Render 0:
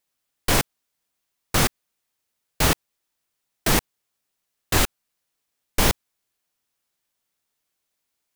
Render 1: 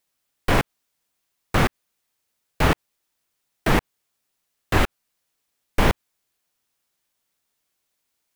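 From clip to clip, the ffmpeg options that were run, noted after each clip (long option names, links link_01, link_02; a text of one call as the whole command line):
ffmpeg -i in.wav -filter_complex "[0:a]acrossover=split=2900[link_01][link_02];[link_02]acompressor=threshold=-38dB:ratio=4:attack=1:release=60[link_03];[link_01][link_03]amix=inputs=2:normalize=0,volume=2.5dB" out.wav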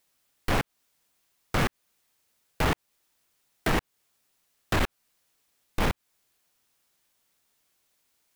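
ffmpeg -i in.wav -af "alimiter=limit=-14.5dB:level=0:latency=1:release=242,asoftclip=type=hard:threshold=-24.5dB,volume=4dB" out.wav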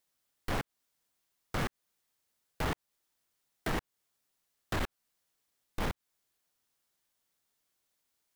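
ffmpeg -i in.wav -af "equalizer=frequency=2500:width_type=o:width=0.35:gain=-2.5,volume=-8dB" out.wav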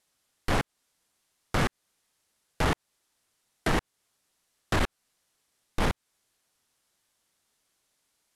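ffmpeg -i in.wav -af "lowpass=frequency=12000:width=0.5412,lowpass=frequency=12000:width=1.3066,volume=7.5dB" out.wav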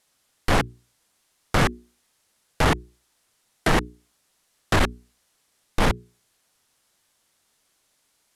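ffmpeg -i in.wav -af "bandreject=frequency=60:width_type=h:width=6,bandreject=frequency=120:width_type=h:width=6,bandreject=frequency=180:width_type=h:width=6,bandreject=frequency=240:width_type=h:width=6,bandreject=frequency=300:width_type=h:width=6,bandreject=frequency=360:width_type=h:width=6,bandreject=frequency=420:width_type=h:width=6,volume=6.5dB" out.wav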